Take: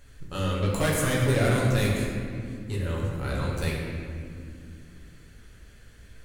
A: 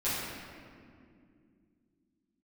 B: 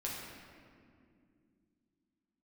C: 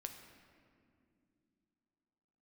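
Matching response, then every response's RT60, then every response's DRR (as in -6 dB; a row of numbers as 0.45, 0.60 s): B; 2.4 s, 2.4 s, not exponential; -13.5, -5.0, 4.5 dB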